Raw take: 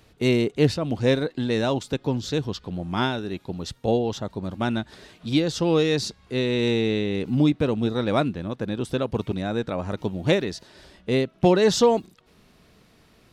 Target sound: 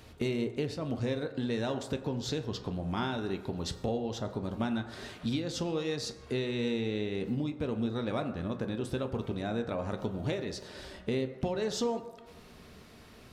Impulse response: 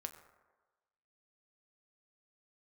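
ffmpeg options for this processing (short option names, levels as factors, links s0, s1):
-filter_complex "[0:a]acompressor=threshold=0.02:ratio=6[s0];[1:a]atrim=start_sample=2205[s1];[s0][s1]afir=irnorm=-1:irlink=0,volume=2.11"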